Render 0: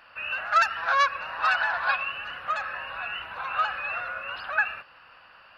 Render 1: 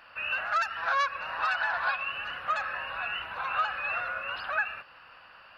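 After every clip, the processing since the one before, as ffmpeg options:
-af "alimiter=limit=-18.5dB:level=0:latency=1:release=293"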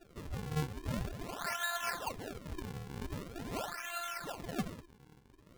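-af "afftfilt=real='hypot(re,im)*cos(PI*b)':imag='0':win_size=512:overlap=0.75,bandreject=f=207.1:t=h:w=4,bandreject=f=414.2:t=h:w=4,bandreject=f=621.3:t=h:w=4,bandreject=f=828.4:t=h:w=4,bandreject=f=1.0355k:t=h:w=4,bandreject=f=1.2426k:t=h:w=4,bandreject=f=1.4497k:t=h:w=4,bandreject=f=1.6568k:t=h:w=4,bandreject=f=1.8639k:t=h:w=4,bandreject=f=2.071k:t=h:w=4,bandreject=f=2.2781k:t=h:w=4,bandreject=f=2.4852k:t=h:w=4,bandreject=f=2.6923k:t=h:w=4,bandreject=f=2.8994k:t=h:w=4,bandreject=f=3.1065k:t=h:w=4,bandreject=f=3.3136k:t=h:w=4,bandreject=f=3.5207k:t=h:w=4,bandreject=f=3.7278k:t=h:w=4,bandreject=f=3.9349k:t=h:w=4,bandreject=f=4.142k:t=h:w=4,bandreject=f=4.3491k:t=h:w=4,bandreject=f=4.5562k:t=h:w=4,bandreject=f=4.7633k:t=h:w=4,bandreject=f=4.9704k:t=h:w=4,bandreject=f=5.1775k:t=h:w=4,bandreject=f=5.3846k:t=h:w=4,bandreject=f=5.5917k:t=h:w=4,bandreject=f=5.7988k:t=h:w=4,acrusher=samples=40:mix=1:aa=0.000001:lfo=1:lforange=64:lforate=0.44,volume=-4dB"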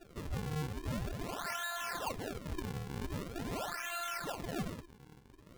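-af "alimiter=level_in=9.5dB:limit=-24dB:level=0:latency=1:release=17,volume=-9.5dB,volume=3dB"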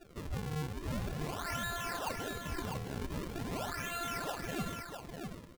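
-af "aecho=1:1:650:0.531"

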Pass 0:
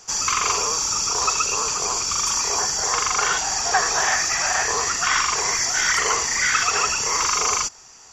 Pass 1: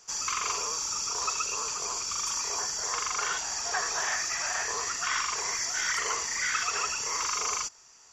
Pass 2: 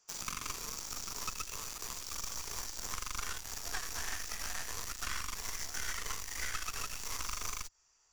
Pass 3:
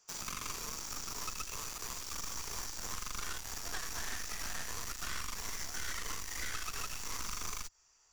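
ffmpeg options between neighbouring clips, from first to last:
-af "lowshelf=f=370:g=-5.5,bandreject=f=780:w=12,volume=-9dB"
-filter_complex "[0:a]aeval=exprs='0.158*(cos(1*acos(clip(val(0)/0.158,-1,1)))-cos(1*PI/2))+0.0501*(cos(2*acos(clip(val(0)/0.158,-1,1)))-cos(2*PI/2))+0.00282*(cos(5*acos(clip(val(0)/0.158,-1,1)))-cos(5*PI/2))+0.0282*(cos(7*acos(clip(val(0)/0.158,-1,1)))-cos(7*PI/2))+0.00282*(cos(8*acos(clip(val(0)/0.158,-1,1)))-cos(8*PI/2))':c=same,asubboost=boost=6.5:cutoff=61,acrossover=split=290|1100[a][b][c];[a]acompressor=threshold=-39dB:ratio=4[d];[b]acompressor=threshold=-55dB:ratio=4[e];[c]acompressor=threshold=-39dB:ratio=4[f];[d][e][f]amix=inputs=3:normalize=0,volume=1dB"
-af "asoftclip=type=tanh:threshold=-34.5dB,volume=2.5dB"

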